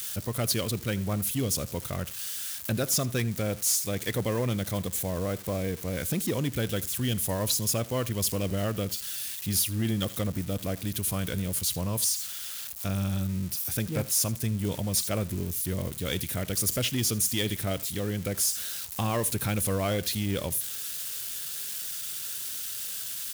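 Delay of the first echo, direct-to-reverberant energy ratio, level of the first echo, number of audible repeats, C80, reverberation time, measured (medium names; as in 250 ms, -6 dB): 80 ms, no reverb, -20.5 dB, 1, no reverb, no reverb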